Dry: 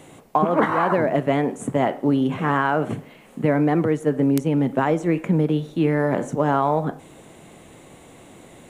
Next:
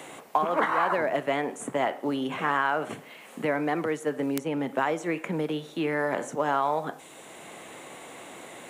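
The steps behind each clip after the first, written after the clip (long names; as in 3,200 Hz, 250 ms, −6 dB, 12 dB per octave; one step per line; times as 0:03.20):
high-pass filter 1,000 Hz 6 dB per octave
multiband upward and downward compressor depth 40%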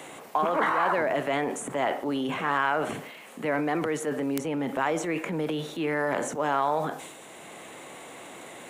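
transient designer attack −3 dB, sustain +7 dB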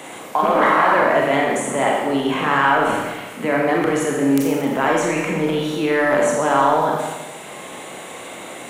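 four-comb reverb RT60 1.2 s, combs from 29 ms, DRR −1.5 dB
level +6 dB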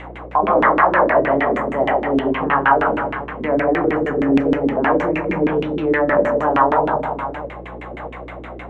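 delay that plays each chunk backwards 577 ms, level −12 dB
auto-filter low-pass saw down 6.4 Hz 280–2,600 Hz
mains hum 60 Hz, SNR 20 dB
level −2 dB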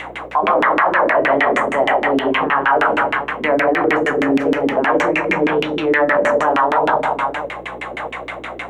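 spectral tilt +3.5 dB per octave
brickwall limiter −11.5 dBFS, peak gain reduction 10 dB
level +6 dB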